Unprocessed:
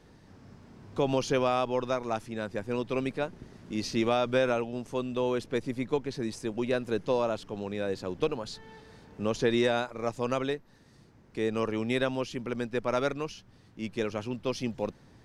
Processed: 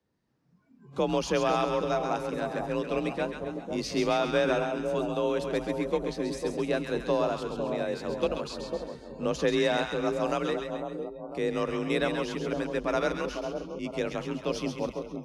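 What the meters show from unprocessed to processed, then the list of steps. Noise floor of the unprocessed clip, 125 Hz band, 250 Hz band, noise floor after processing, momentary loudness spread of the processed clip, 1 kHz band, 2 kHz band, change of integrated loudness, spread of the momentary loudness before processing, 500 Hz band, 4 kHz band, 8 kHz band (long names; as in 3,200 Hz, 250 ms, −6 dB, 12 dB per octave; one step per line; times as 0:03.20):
−58 dBFS, −0.5 dB, +0.5 dB, −58 dBFS, 9 LU, +2.0 dB, +2.0 dB, +1.0 dB, 10 LU, +1.5 dB, +1.5 dB, +1.5 dB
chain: frequency shifter +37 Hz
echo with a time of its own for lows and highs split 980 Hz, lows 500 ms, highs 134 ms, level −5.5 dB
noise reduction from a noise print of the clip's start 22 dB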